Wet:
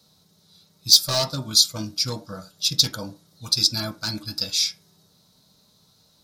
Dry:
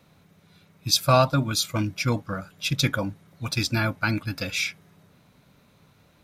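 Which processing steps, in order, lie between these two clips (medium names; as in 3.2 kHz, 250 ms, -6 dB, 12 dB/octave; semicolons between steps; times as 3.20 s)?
wow and flutter 23 cents; wavefolder -14 dBFS; resonant high shelf 3.2 kHz +11.5 dB, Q 3; on a send: reverberation RT60 0.30 s, pre-delay 3 ms, DRR 2.5 dB; on the sum: trim -7 dB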